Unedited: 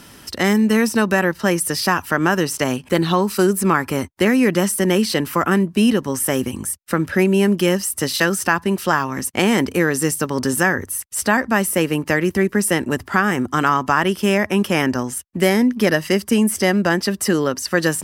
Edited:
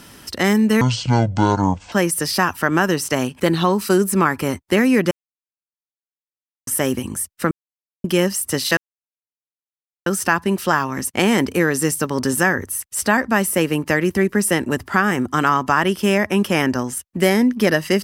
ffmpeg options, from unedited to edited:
-filter_complex "[0:a]asplit=8[s0][s1][s2][s3][s4][s5][s6][s7];[s0]atrim=end=0.814[s8];[s1]atrim=start=0.81:end=1.41,asetpts=PTS-STARTPTS,asetrate=23814,aresample=44100[s9];[s2]atrim=start=1.406:end=4.6,asetpts=PTS-STARTPTS,afade=t=out:st=3.19:d=0.004:c=hsin[s10];[s3]atrim=start=4.6:end=6.16,asetpts=PTS-STARTPTS,volume=0[s11];[s4]atrim=start=6.16:end=7,asetpts=PTS-STARTPTS,afade=t=in:d=0.004:c=hsin,afade=t=out:st=0.836:d=0.004:c=hsin[s12];[s5]atrim=start=7:end=7.53,asetpts=PTS-STARTPTS,volume=0[s13];[s6]atrim=start=7.53:end=8.26,asetpts=PTS-STARTPTS,afade=t=in:d=0.004:c=hsin,afade=t=out:st=0.726:d=0.004:c=hsin,apad=pad_dur=1.29[s14];[s7]atrim=start=8.26,asetpts=PTS-STARTPTS,afade=t=in:d=0.004:c=hsin[s15];[s8][s9]acrossfade=d=0.004:c1=hsin:c2=hsin[s16];[s10][s11][s12][s13][s14][s15]concat=n=6:v=0:a=1[s17];[s16][s17]acrossfade=d=0.004:c1=hsin:c2=hsin"

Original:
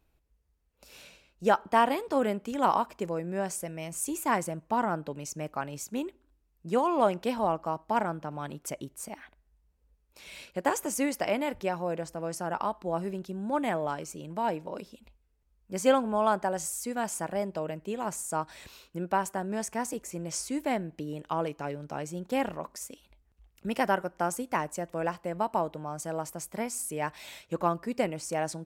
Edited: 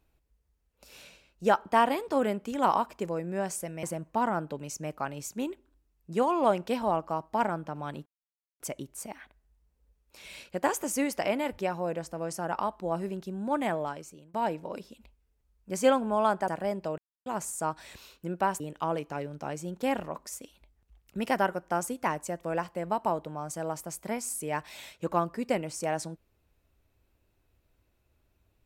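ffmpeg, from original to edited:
-filter_complex "[0:a]asplit=8[s0][s1][s2][s3][s4][s5][s6][s7];[s0]atrim=end=3.832[s8];[s1]atrim=start=4.388:end=8.62,asetpts=PTS-STARTPTS,afade=t=out:st=4.228:d=0.004:c=hsin,apad=pad_dur=0.54[s9];[s2]atrim=start=8.62:end=14.36,asetpts=PTS-STARTPTS,afade=t=in:d=0.004:c=hsin,afade=t=out:st=5.13:d=0.61:silence=0.0794328[s10];[s3]atrim=start=14.36:end=16.502,asetpts=PTS-STARTPTS,afade=t=in:d=0.004:c=hsin:silence=0.0794328[s11];[s4]atrim=start=17.188:end=17.69,asetpts=PTS-STARTPTS,afade=t=out:st=0.498:d=0.004:c=hsin[s12];[s5]atrim=start=17.69:end=17.97,asetpts=PTS-STARTPTS,volume=0[s13];[s6]atrim=start=17.97:end=19.312,asetpts=PTS-STARTPTS,afade=t=in:d=0.004:c=hsin[s14];[s7]atrim=start=21.088[s15];[s9][s10][s11]concat=n=3:v=0:a=1[s16];[s8][s16]acrossfade=d=0.004:c1=hsin:c2=hsin[s17];[s12][s13][s14]concat=n=3:v=0:a=1[s18];[s17][s18]acrossfade=d=0.004:c1=hsin:c2=hsin[s19];[s19][s15]acrossfade=d=0.004:c1=hsin:c2=hsin"

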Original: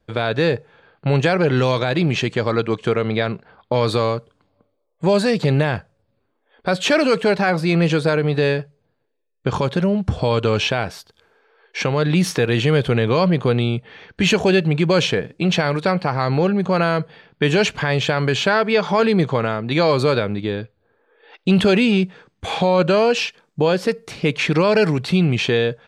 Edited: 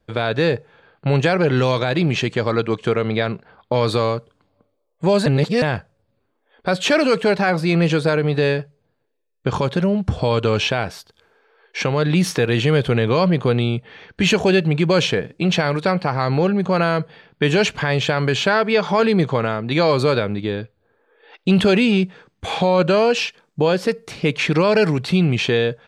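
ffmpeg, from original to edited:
-filter_complex "[0:a]asplit=3[s0][s1][s2];[s0]atrim=end=5.262[s3];[s1]atrim=start=5.258:end=5.622,asetpts=PTS-STARTPTS,areverse[s4];[s2]atrim=start=5.618[s5];[s3][s4]acrossfade=d=0.004:c1=hsin:c2=hsin[s6];[s6][s5]acrossfade=d=0.004:c1=hsin:c2=hsin"

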